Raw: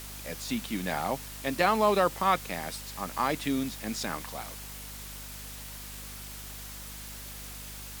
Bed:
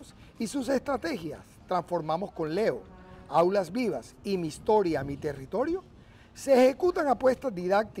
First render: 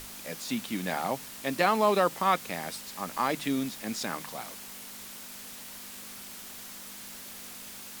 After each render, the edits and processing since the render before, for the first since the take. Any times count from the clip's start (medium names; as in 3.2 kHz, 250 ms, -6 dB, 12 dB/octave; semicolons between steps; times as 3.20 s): hum notches 50/100/150 Hz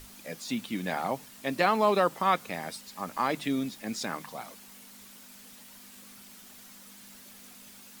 noise reduction 8 dB, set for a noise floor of -44 dBFS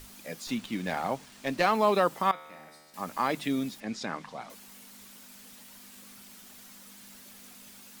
0.47–1.72 s: sliding maximum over 3 samples; 2.31–2.94 s: feedback comb 76 Hz, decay 1.6 s, mix 90%; 3.80–4.50 s: distance through air 89 m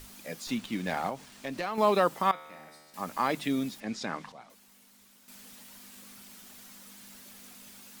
1.09–1.78 s: compression 2.5:1, threshold -33 dBFS; 4.32–5.28 s: gain -9 dB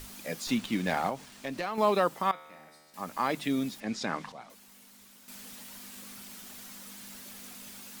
gain riding within 4 dB 2 s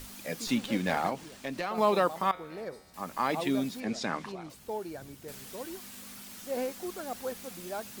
add bed -13 dB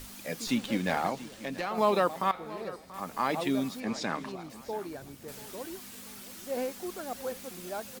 feedback delay 684 ms, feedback 38%, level -17 dB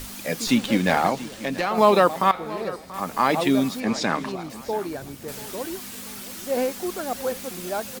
trim +9 dB